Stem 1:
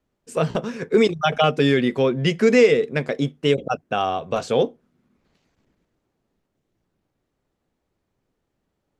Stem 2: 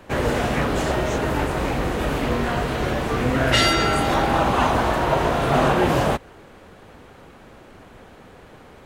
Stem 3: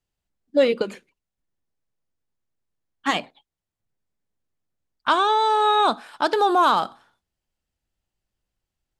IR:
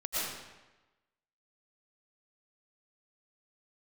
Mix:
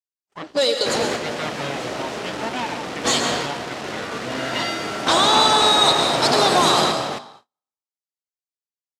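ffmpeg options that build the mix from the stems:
-filter_complex "[0:a]aeval=exprs='abs(val(0))':c=same,volume=-8dB[a];[1:a]acrusher=bits=3:mix=0:aa=0.000001,adelay=750,volume=-3dB,asplit=3[b][c][d];[c]volume=-16dB[e];[d]volume=-4.5dB[f];[2:a]highpass=360,aexciter=amount=13.7:drive=5.5:freq=3.9k,asoftclip=type=tanh:threshold=-16.5dB,volume=0.5dB,asplit=3[g][h][i];[h]volume=-8dB[j];[i]apad=whole_len=423365[k];[b][k]sidechaingate=range=-33dB:threshold=-51dB:ratio=16:detection=peak[l];[3:a]atrim=start_sample=2205[m];[e][j]amix=inputs=2:normalize=0[n];[n][m]afir=irnorm=-1:irlink=0[o];[f]aecho=0:1:269:1[p];[a][l][g][o][p]amix=inputs=5:normalize=0,agate=range=-35dB:threshold=-45dB:ratio=16:detection=peak,highpass=190,lowpass=6.3k"

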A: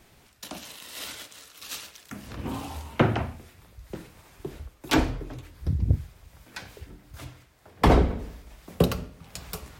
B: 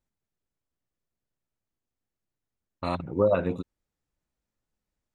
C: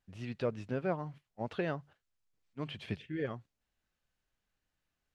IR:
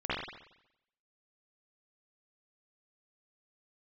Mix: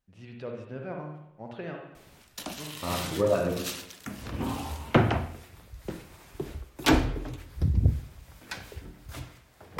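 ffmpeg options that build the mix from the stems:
-filter_complex "[0:a]acontrast=65,adelay=1950,volume=-5.5dB,asplit=2[a][b];[b]volume=-23dB[c];[1:a]volume=-5.5dB,asplit=2[d][e];[e]volume=-8.5dB[f];[2:a]volume=-7dB,asplit=2[g][h];[h]volume=-7.5dB[i];[3:a]atrim=start_sample=2205[j];[c][f][i]amix=inputs=3:normalize=0[k];[k][j]afir=irnorm=-1:irlink=0[l];[a][d][g][l]amix=inputs=4:normalize=0"

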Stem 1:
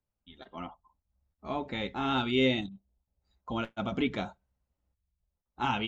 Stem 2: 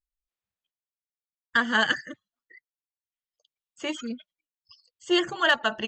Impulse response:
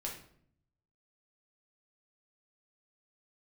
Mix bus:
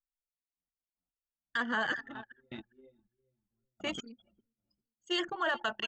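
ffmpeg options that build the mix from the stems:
-filter_complex "[0:a]flanger=delay=8.3:depth=5.5:regen=-44:speed=1.4:shape=triangular,aeval=exprs='val(0)*pow(10,-22*if(lt(mod(-0.75*n/s,1),2*abs(-0.75)/1000),1-mod(-0.75*n/s,1)/(2*abs(-0.75)/1000),(mod(-0.75*n/s,1)-2*abs(-0.75)/1000)/(1-2*abs(-0.75)/1000))/20)':c=same,volume=-5dB,asplit=2[a][b];[b]volume=-11.5dB[c];[1:a]lowshelf=f=280:g=-7.5,acrossover=split=1700[d][e];[d]aeval=exprs='val(0)*(1-0.7/2+0.7/2*cos(2*PI*1.1*n/s))':c=same[f];[e]aeval=exprs='val(0)*(1-0.7/2-0.7/2*cos(2*PI*1.1*n/s))':c=same[g];[f][g]amix=inputs=2:normalize=0,volume=0dB,asplit=3[h][i][j];[i]volume=-20dB[k];[j]apad=whole_len=259036[l];[a][l]sidechaingate=range=-17dB:threshold=-58dB:ratio=16:detection=peak[m];[c][k]amix=inputs=2:normalize=0,aecho=0:1:404|808|1212|1616|2020:1|0.37|0.137|0.0507|0.0187[n];[m][h][n]amix=inputs=3:normalize=0,anlmdn=0.631,alimiter=limit=-22.5dB:level=0:latency=1:release=12"

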